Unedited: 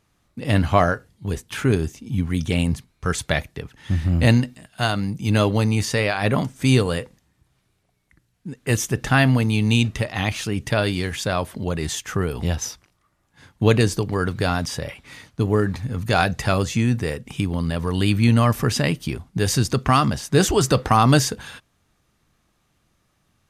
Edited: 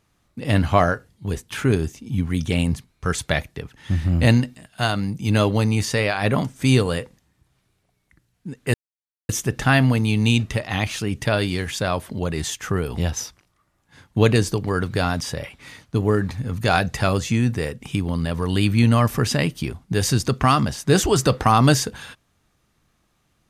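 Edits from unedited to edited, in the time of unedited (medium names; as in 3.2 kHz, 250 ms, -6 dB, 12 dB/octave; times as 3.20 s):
8.74 s: insert silence 0.55 s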